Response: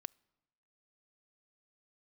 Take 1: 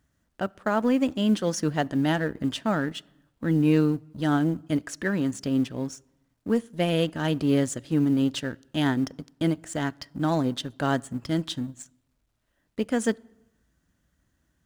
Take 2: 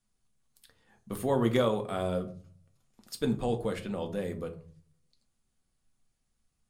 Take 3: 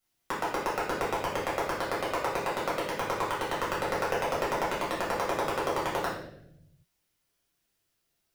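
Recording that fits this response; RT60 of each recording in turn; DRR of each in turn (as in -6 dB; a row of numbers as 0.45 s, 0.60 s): 1; no single decay rate, 0.45 s, 0.75 s; 22.5 dB, 4.5 dB, -7.0 dB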